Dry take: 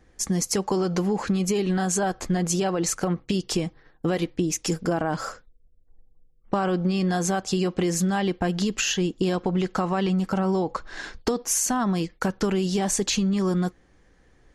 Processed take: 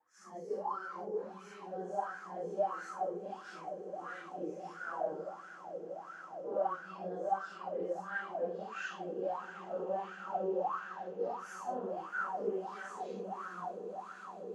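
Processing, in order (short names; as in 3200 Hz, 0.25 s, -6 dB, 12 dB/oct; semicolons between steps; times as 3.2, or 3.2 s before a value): phase scrambler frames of 0.2 s; HPF 81 Hz; on a send: swelling echo 0.159 s, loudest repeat 8, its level -17 dB; on the sum: vibrato 0.43 Hz 10 cents; wah 1.5 Hz 450–1500 Hz, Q 12; gain +3 dB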